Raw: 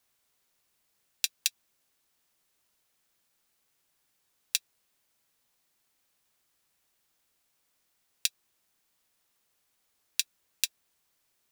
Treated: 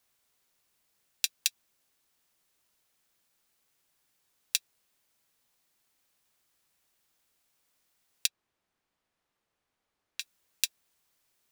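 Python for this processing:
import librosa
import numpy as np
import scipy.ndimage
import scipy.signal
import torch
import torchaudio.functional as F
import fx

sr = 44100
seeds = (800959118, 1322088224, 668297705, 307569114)

y = fx.lowpass(x, sr, hz=1600.0, slope=6, at=(8.26, 10.2), fade=0.02)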